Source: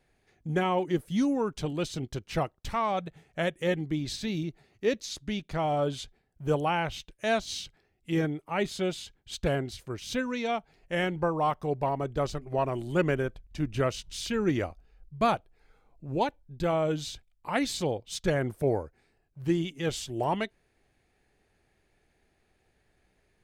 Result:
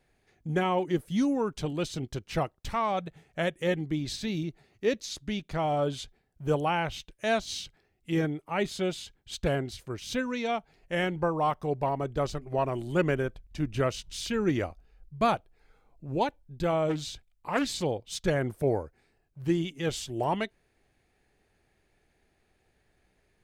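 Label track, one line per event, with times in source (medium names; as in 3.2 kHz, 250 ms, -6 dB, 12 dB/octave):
16.890000	17.820000	loudspeaker Doppler distortion depth 0.27 ms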